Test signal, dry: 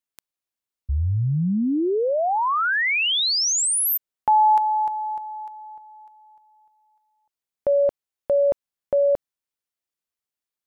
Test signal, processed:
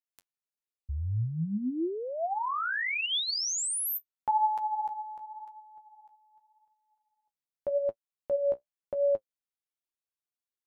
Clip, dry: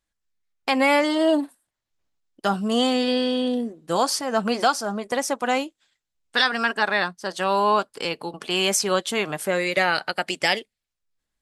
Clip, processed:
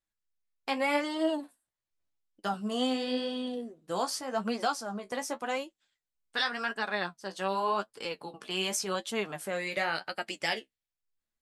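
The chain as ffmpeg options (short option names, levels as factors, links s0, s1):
-af "flanger=delay=8.7:depth=7.2:regen=36:speed=0.88:shape=sinusoidal,volume=0.501"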